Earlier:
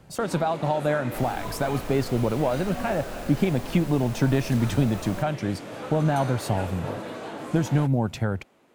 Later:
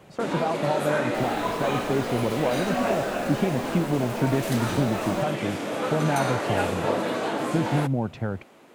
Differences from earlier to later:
speech: add tape spacing loss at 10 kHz 25 dB; first sound +9.0 dB; master: add bass shelf 75 Hz -11.5 dB

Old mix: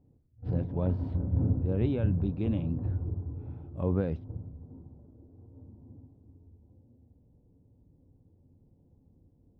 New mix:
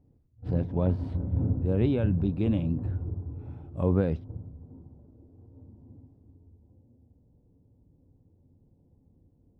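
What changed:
speech +4.0 dB; master: remove distance through air 57 m

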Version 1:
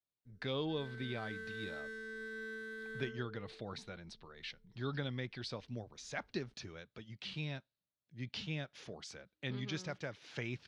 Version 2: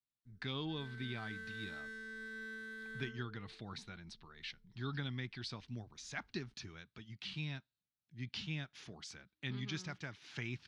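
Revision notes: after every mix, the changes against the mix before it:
master: add peaking EQ 530 Hz -13.5 dB 0.7 oct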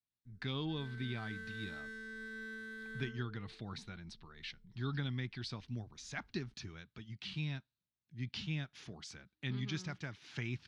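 master: add bass shelf 280 Hz +4.5 dB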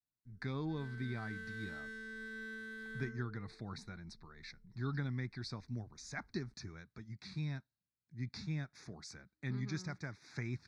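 speech: add Butterworth band-stop 3 kHz, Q 1.6

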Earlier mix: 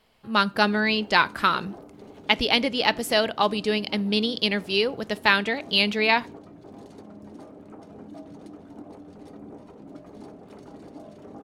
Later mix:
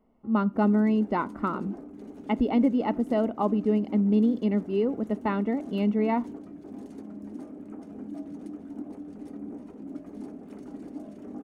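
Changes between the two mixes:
speech: add Savitzky-Golay filter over 65 samples; master: add ten-band graphic EQ 125 Hz -9 dB, 250 Hz +10 dB, 500 Hz -4 dB, 1 kHz -5 dB, 4 kHz -9 dB

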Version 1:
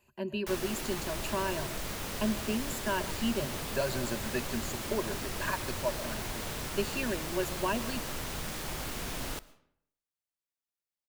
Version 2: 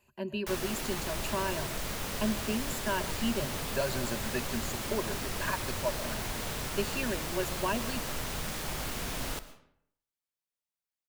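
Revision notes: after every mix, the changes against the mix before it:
background: send +7.5 dB; master: add peaking EQ 330 Hz -3 dB 0.33 oct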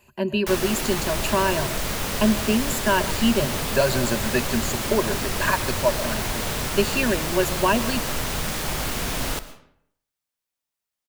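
speech +11.5 dB; background +9.0 dB

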